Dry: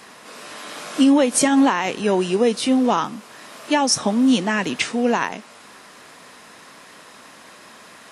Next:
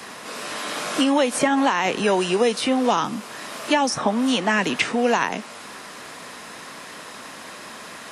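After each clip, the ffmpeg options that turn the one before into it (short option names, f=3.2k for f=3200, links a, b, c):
-filter_complex "[0:a]acrossover=split=120|540|2600[a][b][c][d];[a]acompressor=threshold=-54dB:ratio=4[e];[b]acompressor=threshold=-31dB:ratio=4[f];[c]acompressor=threshold=-25dB:ratio=4[g];[d]acompressor=threshold=-36dB:ratio=4[h];[e][f][g][h]amix=inputs=4:normalize=0,volume=6dB"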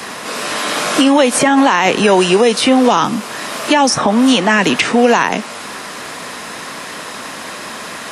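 -af "alimiter=level_in=11.5dB:limit=-1dB:release=50:level=0:latency=1,volume=-1dB"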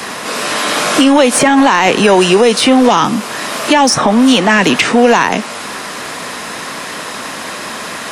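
-af "acontrast=22,volume=-1dB"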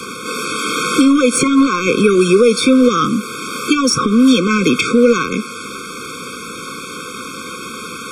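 -af "afftfilt=real='re*eq(mod(floor(b*sr/1024/530),2),0)':imag='im*eq(mod(floor(b*sr/1024/530),2),0)':win_size=1024:overlap=0.75,volume=-1dB"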